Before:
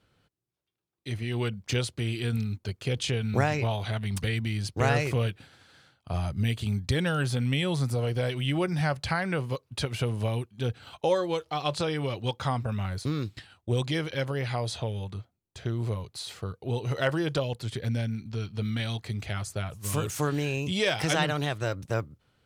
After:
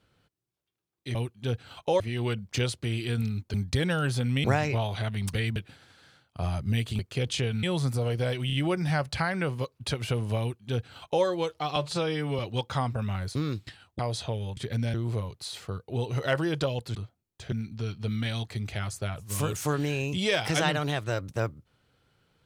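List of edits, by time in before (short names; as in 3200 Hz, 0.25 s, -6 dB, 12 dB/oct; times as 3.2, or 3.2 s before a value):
2.69–3.33 swap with 6.7–7.6
4.45–5.27 cut
8.44 stutter 0.03 s, 3 plays
10.31–11.16 copy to 1.15
11.67–12.09 stretch 1.5×
13.69–14.53 cut
15.11–15.68 swap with 17.69–18.06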